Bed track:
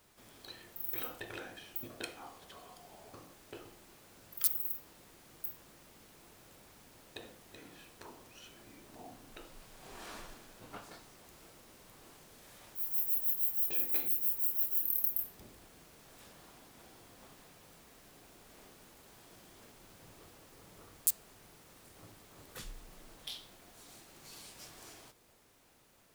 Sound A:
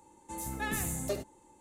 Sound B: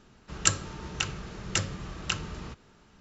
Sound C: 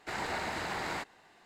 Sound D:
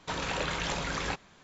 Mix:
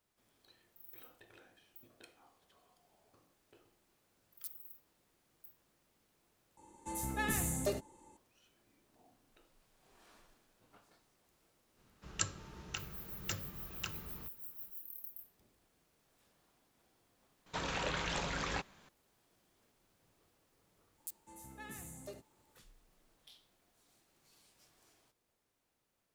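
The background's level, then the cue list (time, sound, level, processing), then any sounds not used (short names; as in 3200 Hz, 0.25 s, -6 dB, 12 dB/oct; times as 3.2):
bed track -16.5 dB
6.57 replace with A -1 dB
11.74 add B -12 dB, fades 0.05 s
17.46 add D -5 dB + Doppler distortion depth 0.11 ms
20.98 add A -15 dB + HPF 64 Hz
not used: C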